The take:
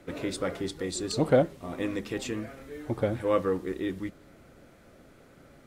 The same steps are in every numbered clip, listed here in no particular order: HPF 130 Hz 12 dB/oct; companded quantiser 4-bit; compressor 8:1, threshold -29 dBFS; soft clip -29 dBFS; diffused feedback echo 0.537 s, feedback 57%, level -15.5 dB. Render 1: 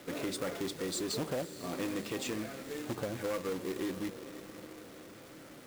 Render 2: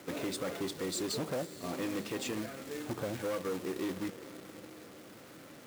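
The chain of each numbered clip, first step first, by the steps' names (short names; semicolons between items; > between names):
compressor > diffused feedback echo > soft clip > HPF > companded quantiser; compressor > soft clip > diffused feedback echo > companded quantiser > HPF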